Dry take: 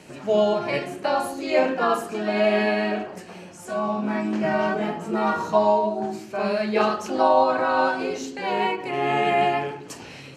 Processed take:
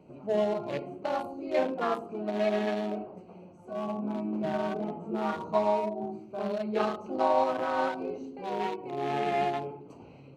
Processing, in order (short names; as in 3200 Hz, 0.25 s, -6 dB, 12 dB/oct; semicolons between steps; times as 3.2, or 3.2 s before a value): Wiener smoothing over 25 samples; gain -6.5 dB